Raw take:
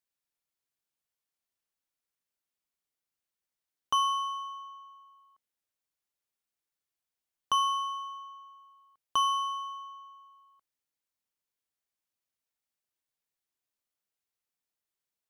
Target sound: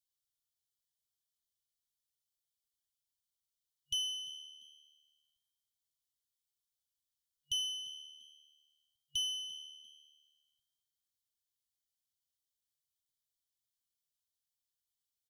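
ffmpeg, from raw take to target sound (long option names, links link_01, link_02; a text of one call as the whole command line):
ffmpeg -i in.wav -filter_complex "[0:a]afftfilt=real='re*(1-between(b*sr/4096,140,2900))':imag='im*(1-between(b*sr/4096,140,2900))':win_size=4096:overlap=0.75,asplit=3[link_01][link_02][link_03];[link_02]adelay=345,afreqshift=75,volume=-20dB[link_04];[link_03]adelay=690,afreqshift=150,volume=-30.2dB[link_05];[link_01][link_04][link_05]amix=inputs=3:normalize=0" out.wav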